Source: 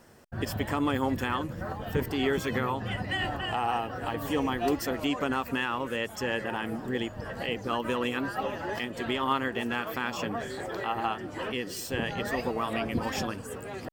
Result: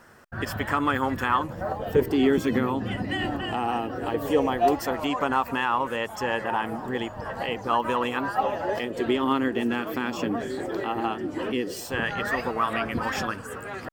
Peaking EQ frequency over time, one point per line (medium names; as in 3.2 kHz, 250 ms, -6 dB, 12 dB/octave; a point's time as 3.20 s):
peaking EQ +10.5 dB 1.1 oct
1.15 s 1.4 kHz
2.29 s 280 Hz
3.80 s 280 Hz
4.93 s 930 Hz
8.34 s 930 Hz
9.20 s 300 Hz
11.59 s 300 Hz
12.00 s 1.4 kHz